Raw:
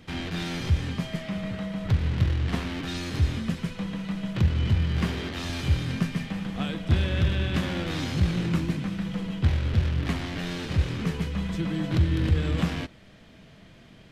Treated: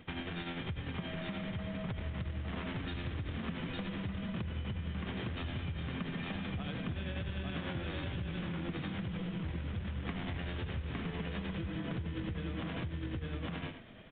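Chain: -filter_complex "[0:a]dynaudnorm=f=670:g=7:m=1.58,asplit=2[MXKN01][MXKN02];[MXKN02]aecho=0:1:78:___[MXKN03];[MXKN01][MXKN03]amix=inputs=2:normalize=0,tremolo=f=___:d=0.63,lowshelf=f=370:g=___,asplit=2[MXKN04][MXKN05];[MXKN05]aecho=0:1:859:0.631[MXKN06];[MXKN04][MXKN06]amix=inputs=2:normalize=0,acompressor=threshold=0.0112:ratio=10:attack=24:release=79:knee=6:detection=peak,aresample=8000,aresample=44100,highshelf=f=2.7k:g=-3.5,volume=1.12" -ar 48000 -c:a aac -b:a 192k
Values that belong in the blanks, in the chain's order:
0.224, 10, -4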